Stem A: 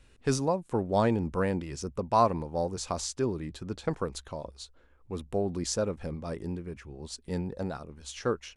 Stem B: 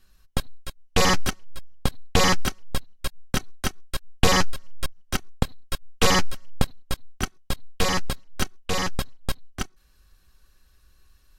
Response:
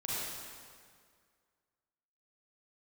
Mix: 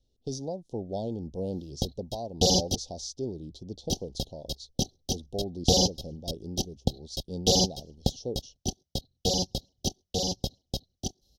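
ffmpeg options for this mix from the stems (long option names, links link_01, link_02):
-filter_complex "[0:a]agate=range=-10dB:threshold=-49dB:ratio=16:detection=peak,alimiter=limit=-19dB:level=0:latency=1:release=448,volume=-3.5dB[link_01];[1:a]highpass=54,adelay=1450,volume=-1.5dB,asplit=3[link_02][link_03][link_04];[link_02]atrim=end=2.76,asetpts=PTS-STARTPTS,afade=type=out:start_time=2.756:duration=0.004:curve=hsin[link_05];[link_03]atrim=start=2.76:end=3.89,asetpts=PTS-STARTPTS,volume=0[link_06];[link_04]atrim=start=3.89,asetpts=PTS-STARTPTS,afade=type=in:duration=0.004:curve=hsin[link_07];[link_05][link_06][link_07]concat=n=3:v=0:a=1[link_08];[link_01][link_08]amix=inputs=2:normalize=0,asuperstop=centerf=1600:order=12:qfactor=0.65,highshelf=frequency=6900:width_type=q:width=3:gain=-6"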